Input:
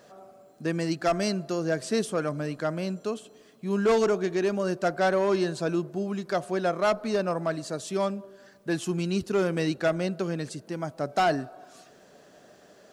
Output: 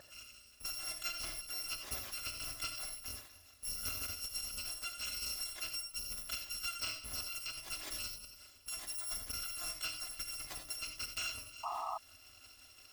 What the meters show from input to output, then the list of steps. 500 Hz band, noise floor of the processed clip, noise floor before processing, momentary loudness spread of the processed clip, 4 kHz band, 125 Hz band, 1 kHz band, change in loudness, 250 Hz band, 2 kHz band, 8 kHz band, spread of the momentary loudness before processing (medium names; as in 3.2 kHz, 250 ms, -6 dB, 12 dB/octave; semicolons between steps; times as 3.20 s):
-32.0 dB, -61 dBFS, -56 dBFS, 10 LU, -0.5 dB, -24.0 dB, -16.0 dB, -12.0 dB, -33.5 dB, -11.0 dB, +1.5 dB, 9 LU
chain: bit-reversed sample order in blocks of 256 samples; low-pass 3.7 kHz 6 dB/octave; band-stop 690 Hz, Q 20; compression 5:1, threshold -41 dBFS, peak gain reduction 16 dB; tremolo 5.7 Hz, depth 42%; gated-style reverb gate 110 ms rising, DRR 6 dB; painted sound noise, 11.63–11.98 s, 650–1300 Hz -42 dBFS; trim +2.5 dB